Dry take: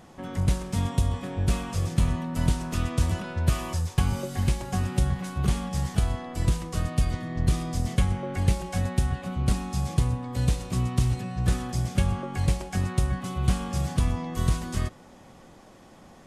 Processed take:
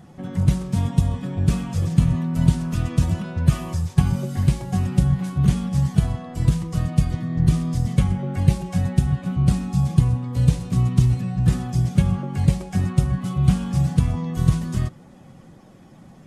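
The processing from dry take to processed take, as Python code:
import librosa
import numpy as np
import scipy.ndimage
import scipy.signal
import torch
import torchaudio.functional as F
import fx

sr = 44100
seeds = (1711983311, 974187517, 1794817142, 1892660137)

y = fx.spec_quant(x, sr, step_db=15)
y = fx.peak_eq(y, sr, hz=150.0, db=12.0, octaves=1.3)
y = F.gain(torch.from_numpy(y), -1.0).numpy()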